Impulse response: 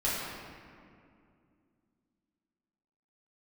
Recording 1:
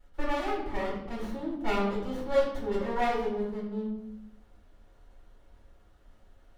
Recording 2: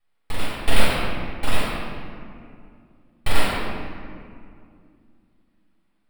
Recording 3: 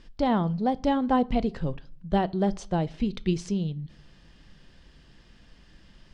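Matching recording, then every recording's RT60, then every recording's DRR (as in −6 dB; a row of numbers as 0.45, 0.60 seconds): 2; 0.85, 2.4, 0.50 seconds; −10.0, −10.0, 16.5 decibels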